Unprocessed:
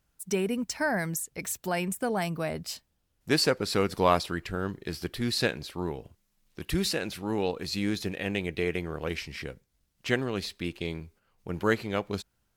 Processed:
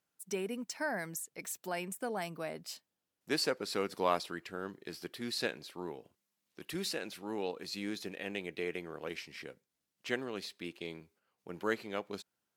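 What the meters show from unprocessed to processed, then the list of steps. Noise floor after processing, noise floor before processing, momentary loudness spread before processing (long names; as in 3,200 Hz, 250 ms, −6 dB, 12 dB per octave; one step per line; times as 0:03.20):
below −85 dBFS, −74 dBFS, 13 LU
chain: high-pass filter 230 Hz 12 dB per octave
level −7.5 dB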